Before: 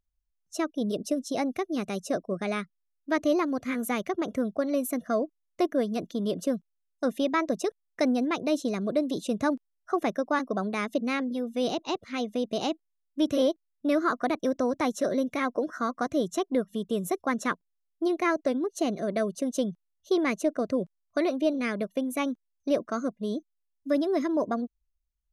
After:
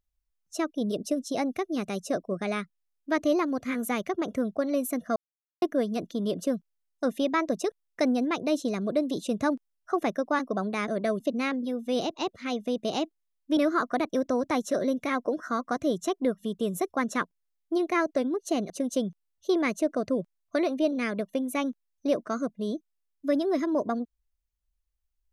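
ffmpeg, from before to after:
ffmpeg -i in.wav -filter_complex "[0:a]asplit=7[link_01][link_02][link_03][link_04][link_05][link_06][link_07];[link_01]atrim=end=5.16,asetpts=PTS-STARTPTS,afade=type=out:start_time=5.156:duration=0.004:curve=hsin[link_08];[link_02]atrim=start=5.16:end=5.62,asetpts=PTS-STARTPTS,volume=0[link_09];[link_03]atrim=start=5.62:end=10.882,asetpts=PTS-STARTPTS,afade=type=in:duration=0.004:curve=hsin[link_10];[link_04]atrim=start=18.998:end=19.322[link_11];[link_05]atrim=start=10.878:end=13.252[link_12];[link_06]atrim=start=13.868:end=19.002[link_13];[link_07]atrim=start=19.318[link_14];[link_08][link_09][link_10]concat=n=3:v=0:a=1[link_15];[link_15][link_11]acrossfade=duration=0.004:curve1=hsin:curve2=hsin[link_16];[link_16][link_12]acrossfade=duration=0.004:curve1=hsin:curve2=hsin[link_17];[link_17][link_13]acrossfade=duration=0.004:curve1=hsin:curve2=hsin[link_18];[link_18][link_14]acrossfade=duration=0.004:curve1=hsin:curve2=hsin" out.wav

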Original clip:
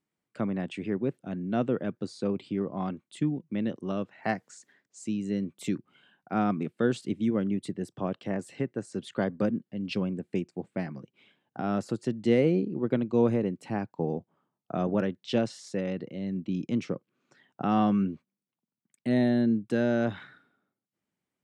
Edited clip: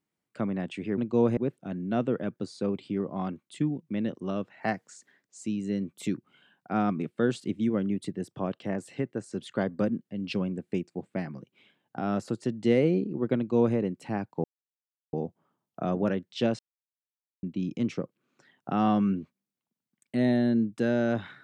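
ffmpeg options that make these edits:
ffmpeg -i in.wav -filter_complex "[0:a]asplit=6[link_01][link_02][link_03][link_04][link_05][link_06];[link_01]atrim=end=0.982[link_07];[link_02]atrim=start=12.978:end=13.372[link_08];[link_03]atrim=start=0.978:end=14.05,asetpts=PTS-STARTPTS,afade=type=out:start_time=13.068:duration=0.004:curve=hsin,apad=pad_dur=0.69[link_09];[link_04]atrim=start=14.05:end=15.51,asetpts=PTS-STARTPTS,afade=type=in:duration=0.004:curve=hsin,afade=type=out:start_time=1.456:duration=0.004:curve=hsin[link_10];[link_05]atrim=start=15.51:end=16.35,asetpts=PTS-STARTPTS,volume=0[link_11];[link_06]atrim=start=16.35,asetpts=PTS-STARTPTS,afade=type=in:duration=0.004:curve=hsin[link_12];[link_07][link_08]acrossfade=duration=0.004:curve1=hsin:curve2=hsin[link_13];[link_09][link_10][link_11][link_12]concat=n=4:v=0:a=1[link_14];[link_13][link_14]acrossfade=duration=0.004:curve1=hsin:curve2=hsin" out.wav

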